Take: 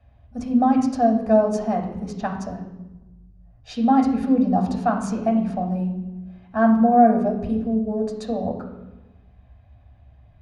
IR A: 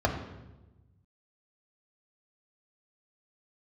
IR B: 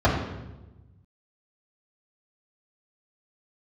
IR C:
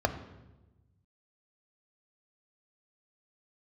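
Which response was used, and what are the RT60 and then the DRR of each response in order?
A; 1.1, 1.1, 1.1 seconds; 1.5, −6.0, 7.5 decibels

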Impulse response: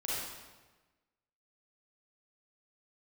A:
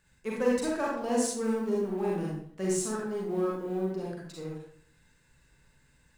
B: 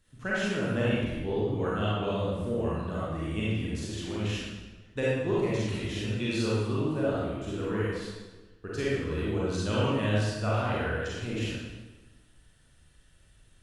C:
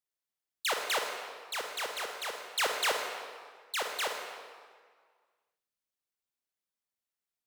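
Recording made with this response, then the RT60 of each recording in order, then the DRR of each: B; 0.55, 1.2, 1.8 seconds; −4.0, −8.0, 2.5 decibels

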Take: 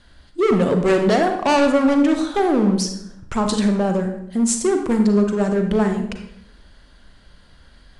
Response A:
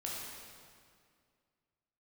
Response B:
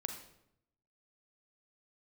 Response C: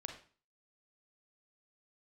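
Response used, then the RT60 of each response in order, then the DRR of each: B; 2.1, 0.75, 0.40 seconds; −5.0, 5.0, 3.5 decibels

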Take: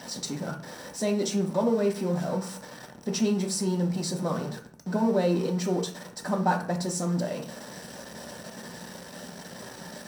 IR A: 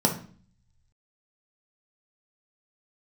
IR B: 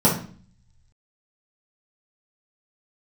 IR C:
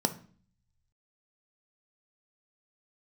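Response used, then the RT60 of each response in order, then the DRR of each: A; 0.45, 0.45, 0.45 seconds; 1.5, −6.5, 8.5 decibels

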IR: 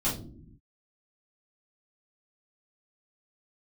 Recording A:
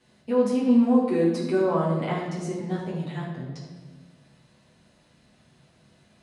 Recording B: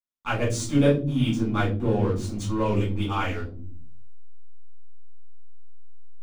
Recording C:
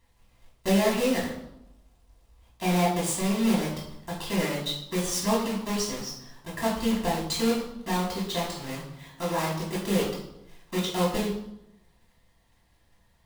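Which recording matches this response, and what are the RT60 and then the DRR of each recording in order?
B; 1.5 s, non-exponential decay, 0.85 s; −8.0, −9.5, −6.0 decibels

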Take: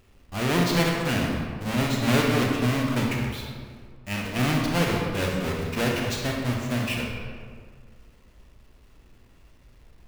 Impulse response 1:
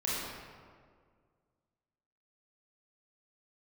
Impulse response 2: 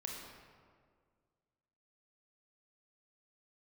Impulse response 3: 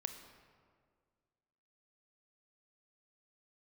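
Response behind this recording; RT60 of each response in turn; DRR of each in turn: 2; 1.9, 1.9, 1.9 seconds; −7.5, −1.0, 7.0 decibels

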